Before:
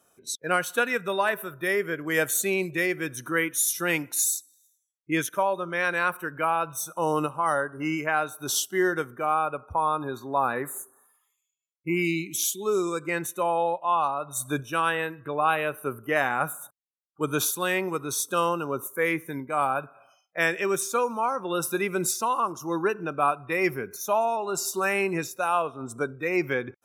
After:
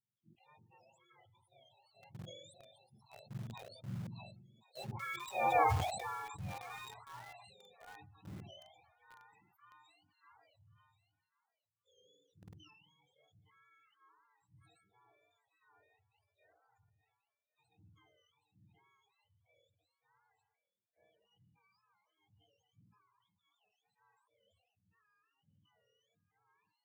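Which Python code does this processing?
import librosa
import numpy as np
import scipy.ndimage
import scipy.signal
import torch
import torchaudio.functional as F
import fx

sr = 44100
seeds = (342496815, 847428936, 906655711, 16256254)

p1 = fx.octave_mirror(x, sr, pivot_hz=1100.0)
p2 = fx.doppler_pass(p1, sr, speed_mps=24, closest_m=2.2, pass_at_s=5.57)
p3 = fx.high_shelf(p2, sr, hz=5100.0, db=-6.0)
p4 = fx.echo_thinned(p3, sr, ms=1087, feedback_pct=22, hz=650.0, wet_db=-20)
p5 = fx.spec_topn(p4, sr, count=32)
p6 = fx.low_shelf(p5, sr, hz=160.0, db=-6.0)
p7 = fx.quant_dither(p6, sr, seeds[0], bits=8, dither='none')
p8 = p6 + F.gain(torch.from_numpy(p7), -3.5).numpy()
p9 = fx.sustainer(p8, sr, db_per_s=45.0)
y = F.gain(torch.from_numpy(p9), -5.0).numpy()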